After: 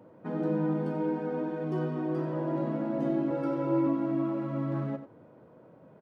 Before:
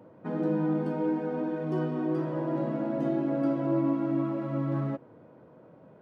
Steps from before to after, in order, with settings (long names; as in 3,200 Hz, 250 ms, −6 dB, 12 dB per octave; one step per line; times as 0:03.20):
0:03.30–0:03.87: comb filter 2.2 ms, depth 78%
single-tap delay 91 ms −11.5 dB
level −1.5 dB